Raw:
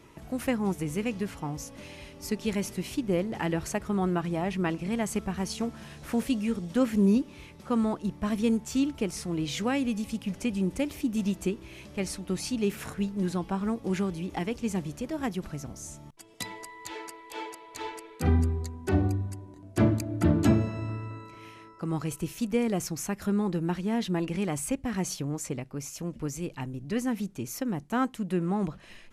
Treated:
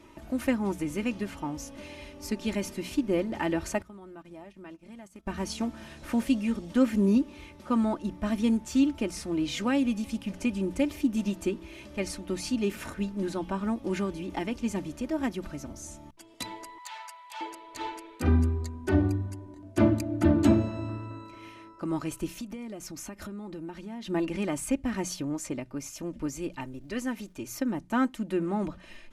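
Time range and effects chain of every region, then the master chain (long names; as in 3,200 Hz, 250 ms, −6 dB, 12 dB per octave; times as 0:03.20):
0:03.82–0:05.27: noise gate −32 dBFS, range −18 dB + high-shelf EQ 7,600 Hz +6.5 dB + downward compressor 4 to 1, threshold −46 dBFS
0:16.78–0:17.41: Butterworth high-pass 700 Hz + saturating transformer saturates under 3,900 Hz
0:22.30–0:24.08: notch filter 1,700 Hz, Q 18 + downward compressor 8 to 1, threshold −35 dBFS
0:26.60–0:27.49: parametric band 200 Hz −7.5 dB 1.1 octaves + surface crackle 280 per second −58 dBFS
whole clip: high-shelf EQ 6,200 Hz −5 dB; mains-hum notches 60/120/180 Hz; comb filter 3.3 ms, depth 53%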